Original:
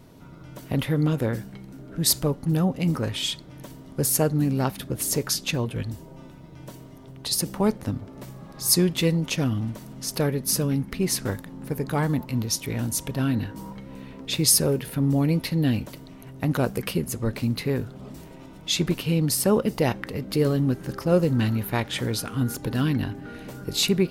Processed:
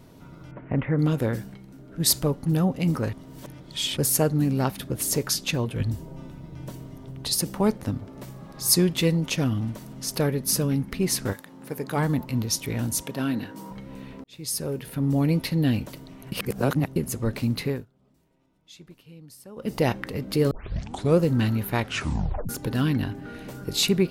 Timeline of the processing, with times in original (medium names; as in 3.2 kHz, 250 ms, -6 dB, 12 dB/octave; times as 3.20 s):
0.51–0.99 s: steep low-pass 2.3 kHz
1.54–2.00 s: gain -4 dB
3.13–3.97 s: reverse
5.80–7.31 s: bass shelf 240 Hz +7 dB
11.32–11.96 s: high-pass 760 Hz -> 220 Hz 6 dB/octave
13.02–13.71 s: high-pass 200 Hz
14.24–15.25 s: fade in
16.32–16.96 s: reverse
17.66–19.76 s: dip -24 dB, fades 0.20 s
20.51 s: tape start 0.67 s
21.82 s: tape stop 0.67 s